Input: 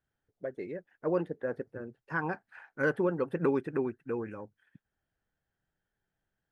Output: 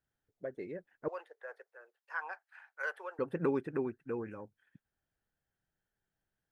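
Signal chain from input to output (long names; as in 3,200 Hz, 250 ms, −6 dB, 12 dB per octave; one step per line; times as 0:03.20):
0:01.08–0:03.19: Bessel high-pass filter 920 Hz, order 8
level −3.5 dB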